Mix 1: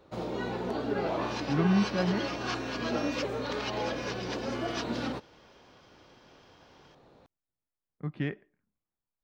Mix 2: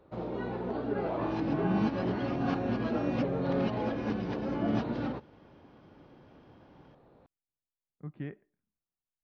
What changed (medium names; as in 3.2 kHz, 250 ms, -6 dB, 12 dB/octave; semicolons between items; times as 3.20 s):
speech -6.0 dB; second sound: remove brick-wall FIR high-pass 880 Hz; master: add tape spacing loss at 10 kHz 31 dB